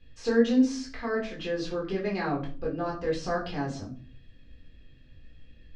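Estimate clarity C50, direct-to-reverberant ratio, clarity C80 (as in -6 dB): 9.5 dB, -4.0 dB, 15.0 dB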